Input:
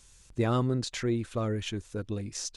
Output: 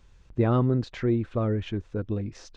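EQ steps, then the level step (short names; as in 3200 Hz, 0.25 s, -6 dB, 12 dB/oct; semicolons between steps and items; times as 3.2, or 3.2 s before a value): tape spacing loss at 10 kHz 34 dB; +5.5 dB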